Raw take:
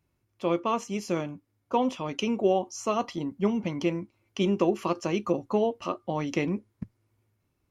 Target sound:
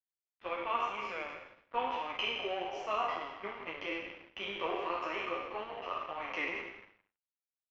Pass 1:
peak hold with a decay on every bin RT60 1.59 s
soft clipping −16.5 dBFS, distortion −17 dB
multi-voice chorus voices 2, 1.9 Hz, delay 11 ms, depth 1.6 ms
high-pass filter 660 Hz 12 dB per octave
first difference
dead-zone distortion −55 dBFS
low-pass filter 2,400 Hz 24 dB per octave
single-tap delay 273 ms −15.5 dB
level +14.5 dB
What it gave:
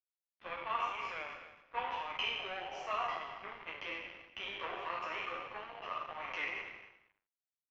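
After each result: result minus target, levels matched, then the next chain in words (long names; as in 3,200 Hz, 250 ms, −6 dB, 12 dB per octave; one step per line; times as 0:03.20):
echo 107 ms late; soft clipping: distortion +12 dB; 250 Hz band −8.0 dB
peak hold with a decay on every bin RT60 1.59 s
soft clipping −8.5 dBFS, distortion −29 dB
multi-voice chorus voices 2, 1.9 Hz, delay 11 ms, depth 1.6 ms
high-pass filter 660 Hz 12 dB per octave
first difference
dead-zone distortion −55 dBFS
low-pass filter 2,400 Hz 24 dB per octave
single-tap delay 166 ms −15.5 dB
level +14.5 dB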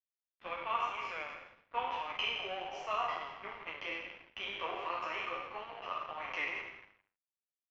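250 Hz band −7.5 dB
peak hold with a decay on every bin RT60 1.59 s
soft clipping −8.5 dBFS, distortion −29 dB
multi-voice chorus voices 2, 1.9 Hz, delay 11 ms, depth 1.6 ms
high-pass filter 320 Hz 12 dB per octave
first difference
dead-zone distortion −55 dBFS
low-pass filter 2,400 Hz 24 dB per octave
single-tap delay 166 ms −15.5 dB
level +14.5 dB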